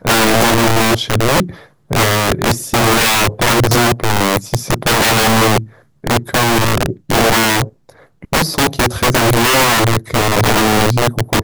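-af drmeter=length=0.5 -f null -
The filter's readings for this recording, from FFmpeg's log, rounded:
Channel 1: DR: 1.4
Overall DR: 1.4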